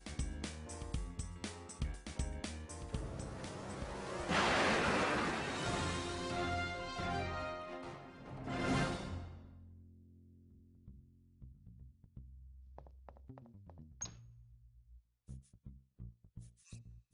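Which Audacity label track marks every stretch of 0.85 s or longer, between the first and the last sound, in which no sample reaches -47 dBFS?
9.450000	10.880000	silence
14.140000	15.290000	silence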